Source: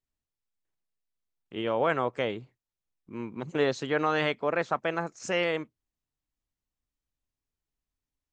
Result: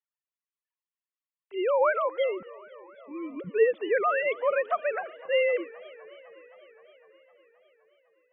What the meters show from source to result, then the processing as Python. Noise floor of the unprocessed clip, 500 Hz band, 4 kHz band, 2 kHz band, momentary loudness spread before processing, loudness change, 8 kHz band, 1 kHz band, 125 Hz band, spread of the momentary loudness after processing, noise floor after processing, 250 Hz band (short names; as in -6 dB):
under -85 dBFS, +4.0 dB, n/a, +1.0 dB, 13 LU, +2.0 dB, under -30 dB, +1.0 dB, under -15 dB, 18 LU, under -85 dBFS, -5.5 dB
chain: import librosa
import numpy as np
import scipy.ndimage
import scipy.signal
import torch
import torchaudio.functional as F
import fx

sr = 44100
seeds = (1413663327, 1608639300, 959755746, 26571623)

y = fx.sine_speech(x, sr)
y = fx.echo_warbled(y, sr, ms=257, feedback_pct=75, rate_hz=2.8, cents=210, wet_db=-21.5)
y = y * librosa.db_to_amplitude(2.5)